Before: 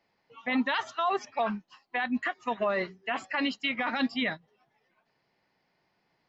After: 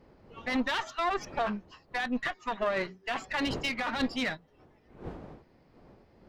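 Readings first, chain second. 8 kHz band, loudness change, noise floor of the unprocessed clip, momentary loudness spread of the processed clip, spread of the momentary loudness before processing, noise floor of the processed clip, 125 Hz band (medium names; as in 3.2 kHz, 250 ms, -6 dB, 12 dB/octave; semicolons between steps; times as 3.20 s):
no reading, -1.5 dB, -75 dBFS, 14 LU, 6 LU, -63 dBFS, +4.0 dB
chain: single-diode clipper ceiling -33.5 dBFS; wind noise 450 Hz -50 dBFS; trim +1.5 dB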